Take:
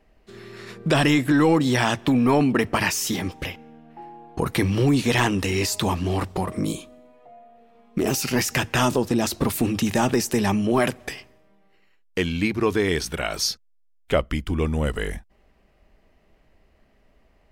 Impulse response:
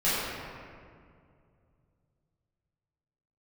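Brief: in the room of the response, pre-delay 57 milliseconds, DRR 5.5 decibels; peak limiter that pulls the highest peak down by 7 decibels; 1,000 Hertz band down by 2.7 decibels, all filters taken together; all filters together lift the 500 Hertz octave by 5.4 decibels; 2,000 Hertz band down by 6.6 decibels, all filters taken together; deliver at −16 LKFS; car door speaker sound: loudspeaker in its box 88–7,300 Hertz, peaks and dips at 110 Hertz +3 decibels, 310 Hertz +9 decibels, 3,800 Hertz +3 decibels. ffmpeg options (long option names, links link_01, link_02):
-filter_complex "[0:a]equalizer=frequency=500:width_type=o:gain=6,equalizer=frequency=1000:width_type=o:gain=-4.5,equalizer=frequency=2000:width_type=o:gain=-7.5,alimiter=limit=-13.5dB:level=0:latency=1,asplit=2[link_01][link_02];[1:a]atrim=start_sample=2205,adelay=57[link_03];[link_02][link_03]afir=irnorm=-1:irlink=0,volume=-19.5dB[link_04];[link_01][link_04]amix=inputs=2:normalize=0,highpass=88,equalizer=frequency=110:width_type=q:width=4:gain=3,equalizer=frequency=310:width_type=q:width=4:gain=9,equalizer=frequency=3800:width_type=q:width=4:gain=3,lowpass=frequency=7300:width=0.5412,lowpass=frequency=7300:width=1.3066,volume=4dB"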